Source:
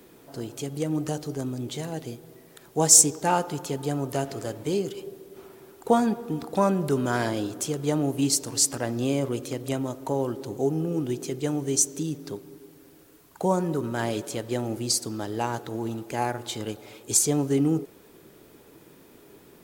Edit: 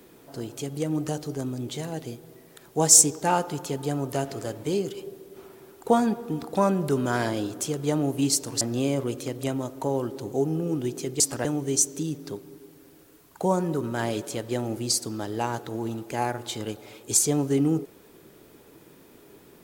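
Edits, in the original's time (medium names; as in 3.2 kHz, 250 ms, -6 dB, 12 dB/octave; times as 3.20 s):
8.61–8.86 s: move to 11.45 s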